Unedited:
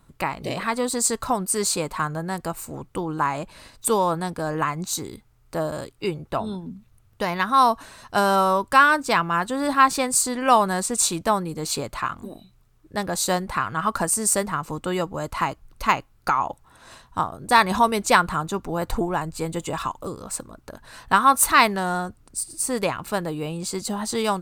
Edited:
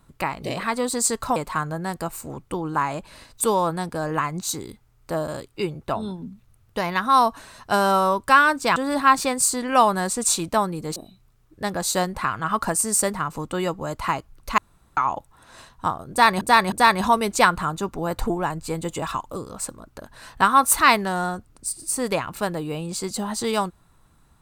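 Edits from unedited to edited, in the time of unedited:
1.36–1.80 s: delete
9.20–9.49 s: delete
11.69–12.29 s: delete
15.91–16.30 s: room tone
17.43–17.74 s: loop, 3 plays

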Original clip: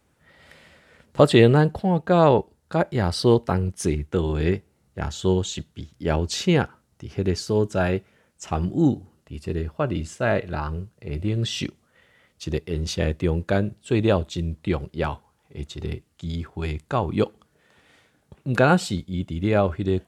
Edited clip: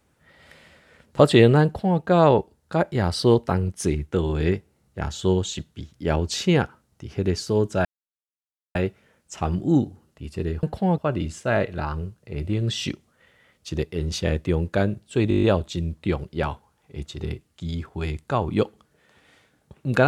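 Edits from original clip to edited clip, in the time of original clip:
1.65–2.00 s: copy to 9.73 s
7.85 s: insert silence 0.90 s
14.04 s: stutter 0.02 s, 8 plays

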